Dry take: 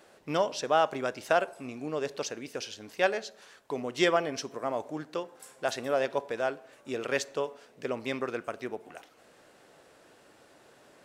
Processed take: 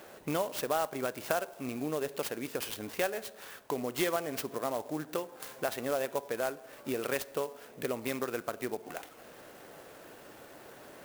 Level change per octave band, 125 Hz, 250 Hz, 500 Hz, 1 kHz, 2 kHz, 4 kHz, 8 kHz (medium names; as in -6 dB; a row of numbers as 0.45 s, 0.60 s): -0.5 dB, -1.0 dB, -3.5 dB, -5.0 dB, -4.5 dB, -4.0 dB, +0.5 dB